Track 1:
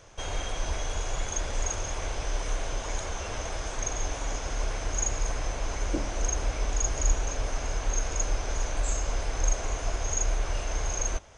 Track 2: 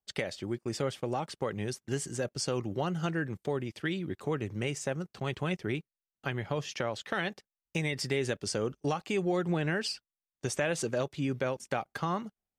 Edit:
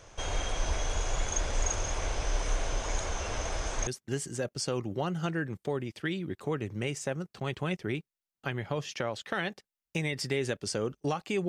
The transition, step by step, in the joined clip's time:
track 1
0:03.87: continue with track 2 from 0:01.67

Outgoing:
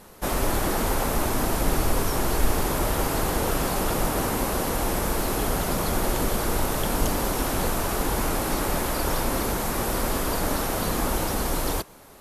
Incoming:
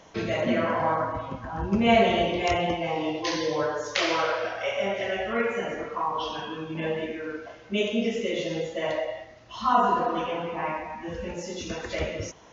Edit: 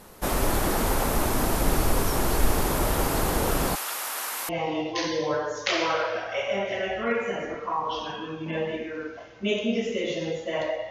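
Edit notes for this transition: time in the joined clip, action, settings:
outgoing
0:03.75–0:04.49: high-pass filter 1,300 Hz 12 dB per octave
0:04.49: continue with incoming from 0:02.78

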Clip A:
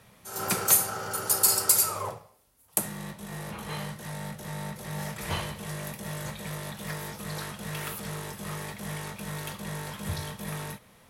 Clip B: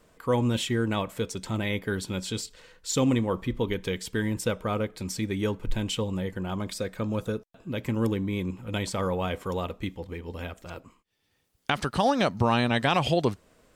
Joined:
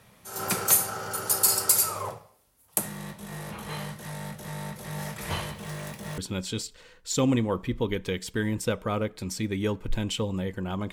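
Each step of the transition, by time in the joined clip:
clip A
0:05.51–0:06.18: running median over 3 samples
0:06.18: continue with clip B from 0:01.97

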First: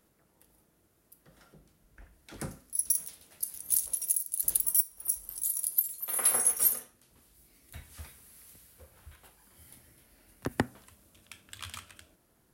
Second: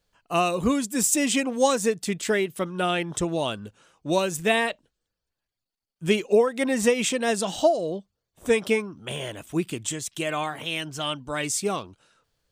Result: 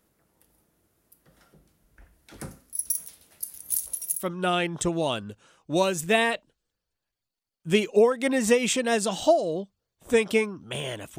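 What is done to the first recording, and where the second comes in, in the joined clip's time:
first
0:04.21: continue with second from 0:02.57, crossfade 0.18 s

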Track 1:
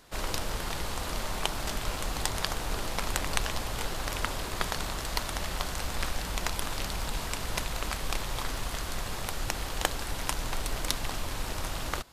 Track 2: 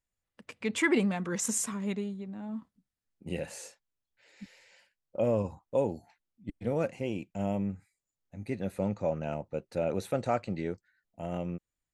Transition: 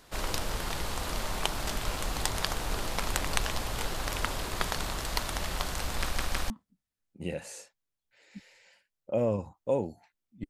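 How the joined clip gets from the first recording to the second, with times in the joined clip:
track 1
0:06.02: stutter in place 0.16 s, 3 plays
0:06.50: continue with track 2 from 0:02.56

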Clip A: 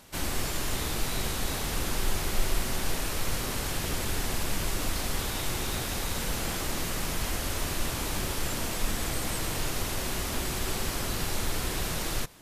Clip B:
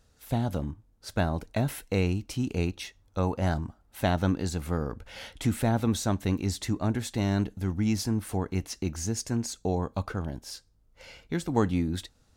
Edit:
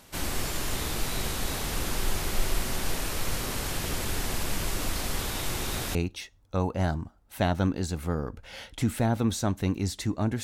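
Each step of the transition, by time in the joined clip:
clip A
0:05.95: continue with clip B from 0:02.58

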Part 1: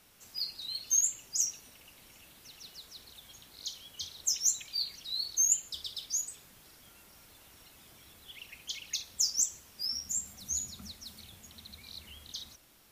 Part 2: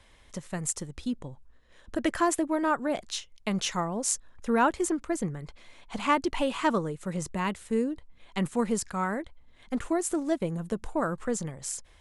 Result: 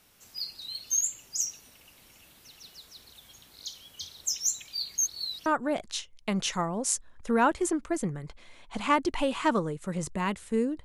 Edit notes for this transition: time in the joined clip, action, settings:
part 1
0:04.98–0:05.46: reverse
0:05.46: continue with part 2 from 0:02.65

